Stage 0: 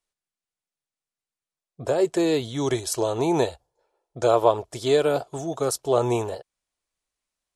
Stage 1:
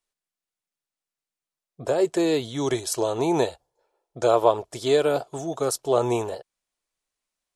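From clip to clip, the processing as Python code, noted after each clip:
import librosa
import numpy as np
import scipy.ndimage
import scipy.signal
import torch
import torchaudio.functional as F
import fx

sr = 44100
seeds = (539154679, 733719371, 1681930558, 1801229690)

y = fx.peak_eq(x, sr, hz=66.0, db=-7.5, octaves=1.4)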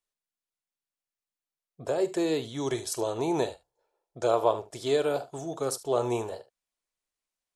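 y = fx.room_early_taps(x, sr, ms=(44, 74), db=(-16.0, -17.0))
y = y * librosa.db_to_amplitude(-5.5)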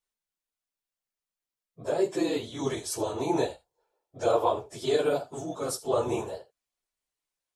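y = fx.phase_scramble(x, sr, seeds[0], window_ms=50)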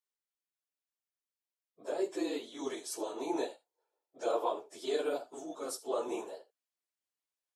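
y = scipy.signal.sosfilt(scipy.signal.cheby1(3, 1.0, 270.0, 'highpass', fs=sr, output='sos'), x)
y = y * librosa.db_to_amplitude(-7.0)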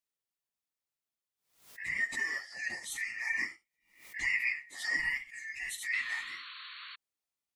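y = fx.band_shuffle(x, sr, order='2143')
y = fx.spec_paint(y, sr, seeds[1], shape='noise', start_s=5.93, length_s=1.03, low_hz=1000.0, high_hz=4500.0, level_db=-47.0)
y = fx.pre_swell(y, sr, db_per_s=110.0)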